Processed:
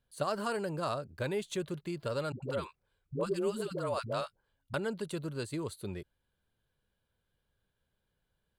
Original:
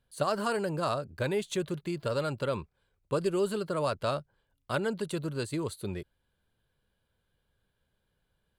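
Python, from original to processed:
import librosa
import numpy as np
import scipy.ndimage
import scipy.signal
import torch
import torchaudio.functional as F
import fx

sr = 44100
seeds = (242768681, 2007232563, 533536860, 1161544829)

y = fx.dispersion(x, sr, late='highs', ms=103.0, hz=430.0, at=(2.32, 4.74))
y = y * 10.0 ** (-4.0 / 20.0)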